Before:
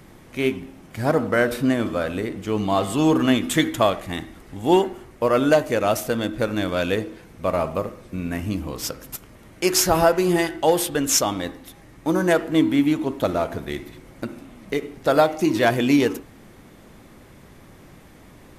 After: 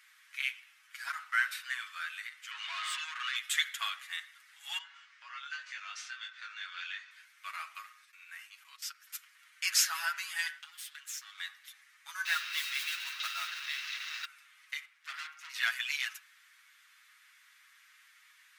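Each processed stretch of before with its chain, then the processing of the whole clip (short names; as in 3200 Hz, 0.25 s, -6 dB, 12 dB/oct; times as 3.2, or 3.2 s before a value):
2.51–3.36 LPF 9000 Hz + compressor, threshold -23 dBFS + overdrive pedal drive 22 dB, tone 2900 Hz, clips at -14.5 dBFS
4.78–7.11 LPF 6100 Hz 24 dB/oct + compressor 2.5:1, threshold -29 dBFS + doubler 22 ms -3 dB
8.05–9.07 level quantiser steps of 16 dB + short-mantissa float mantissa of 8-bit
10.58–11.38 half-wave gain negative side -12 dB + compressor 12:1, threshold -28 dBFS + bell 420 Hz -14 dB 1.5 oct
12.25–14.25 delta modulation 32 kbps, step -25 dBFS + modulation noise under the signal 19 dB + small resonant body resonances 290/2700/3800 Hz, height 14 dB, ringing for 40 ms
14.85–15.5 high shelf 4500 Hz -8 dB + notches 60/120/180/240/300/360/420/480/540/600 Hz + tube stage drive 25 dB, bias 0.8
whole clip: steep high-pass 1400 Hz 36 dB/oct; high shelf 7100 Hz -7 dB; comb 7.2 ms, depth 75%; gain -5.5 dB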